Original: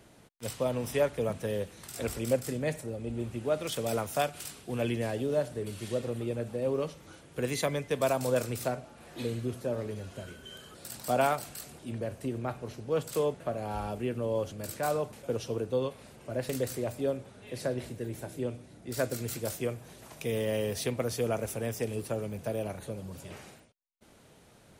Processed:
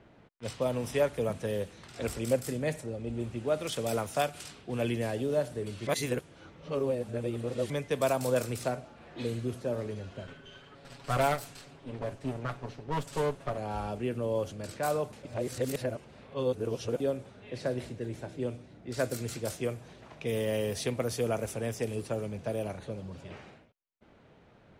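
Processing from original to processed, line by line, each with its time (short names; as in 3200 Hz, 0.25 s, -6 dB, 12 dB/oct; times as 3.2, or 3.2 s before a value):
5.87–7.7 reverse
10.27–13.58 minimum comb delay 7.2 ms
15.25–17 reverse
whole clip: low-pass opened by the level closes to 2400 Hz, open at -27.5 dBFS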